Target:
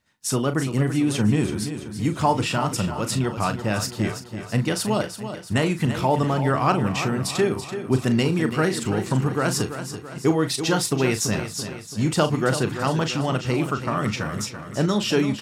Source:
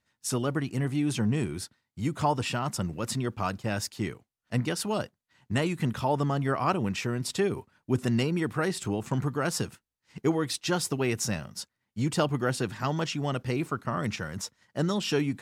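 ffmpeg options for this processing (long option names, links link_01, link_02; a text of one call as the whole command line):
ffmpeg -i in.wav -filter_complex "[0:a]asplit=2[link_01][link_02];[link_02]adelay=38,volume=-10dB[link_03];[link_01][link_03]amix=inputs=2:normalize=0,aecho=1:1:334|668|1002|1336|1670|2004:0.316|0.164|0.0855|0.0445|0.0231|0.012,volume=5.5dB" out.wav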